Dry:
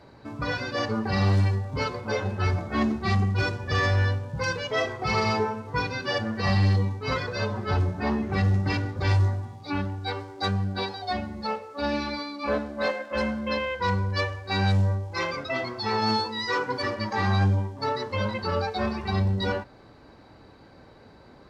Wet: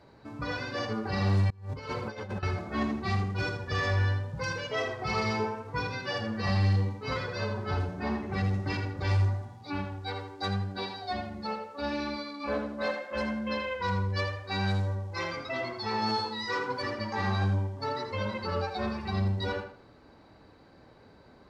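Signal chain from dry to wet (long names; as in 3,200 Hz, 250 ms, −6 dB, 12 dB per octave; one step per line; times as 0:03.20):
tape delay 81 ms, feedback 30%, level −6 dB, low-pass 5,100 Hz
0:01.50–0:02.43: compressor whose output falls as the input rises −31 dBFS, ratio −0.5
level −5.5 dB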